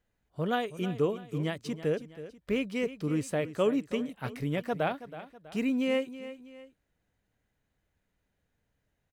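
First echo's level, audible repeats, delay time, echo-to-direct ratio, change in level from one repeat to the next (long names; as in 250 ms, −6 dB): −14.0 dB, 2, 324 ms, −13.0 dB, −7.5 dB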